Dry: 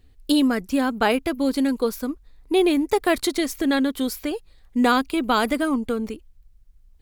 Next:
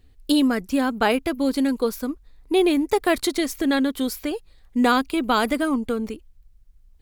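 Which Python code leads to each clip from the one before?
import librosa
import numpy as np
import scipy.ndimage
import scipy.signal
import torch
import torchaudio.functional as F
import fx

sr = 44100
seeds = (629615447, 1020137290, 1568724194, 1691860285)

y = x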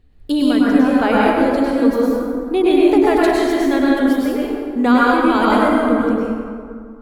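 y = fx.high_shelf(x, sr, hz=3400.0, db=-11.5)
y = fx.rev_plate(y, sr, seeds[0], rt60_s=2.1, hf_ratio=0.5, predelay_ms=90, drr_db=-6.0)
y = y * librosa.db_to_amplitude(1.0)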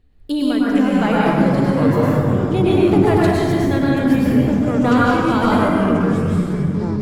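y = fx.echo_pitch(x, sr, ms=337, semitones=-6, count=3, db_per_echo=-3.0)
y = y * librosa.db_to_amplitude(-3.0)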